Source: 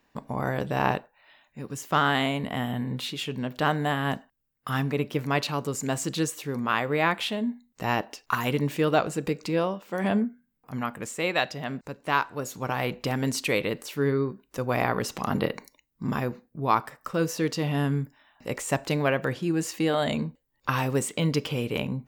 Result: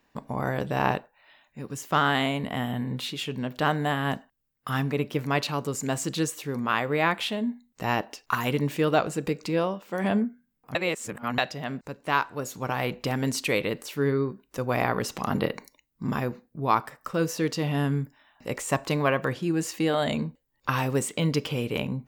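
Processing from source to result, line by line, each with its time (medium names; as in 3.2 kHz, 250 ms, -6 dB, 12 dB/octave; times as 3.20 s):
10.75–11.38 s: reverse
18.70–19.33 s: peaking EQ 1.1 kHz +8.5 dB 0.22 oct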